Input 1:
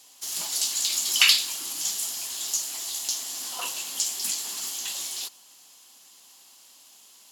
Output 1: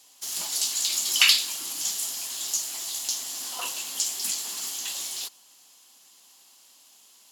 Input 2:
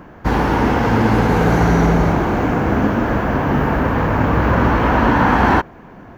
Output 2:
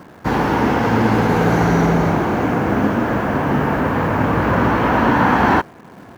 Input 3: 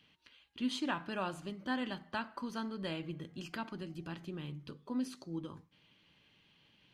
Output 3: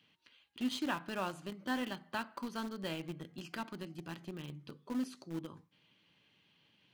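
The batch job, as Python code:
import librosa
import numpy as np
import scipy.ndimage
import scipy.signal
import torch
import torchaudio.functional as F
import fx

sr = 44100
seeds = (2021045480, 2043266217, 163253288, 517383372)

p1 = scipy.signal.sosfilt(scipy.signal.butter(2, 100.0, 'highpass', fs=sr, output='sos'), x)
p2 = fx.quant_dither(p1, sr, seeds[0], bits=6, dither='none')
p3 = p1 + (p2 * librosa.db_to_amplitude(-10.5))
y = p3 * librosa.db_to_amplitude(-2.5)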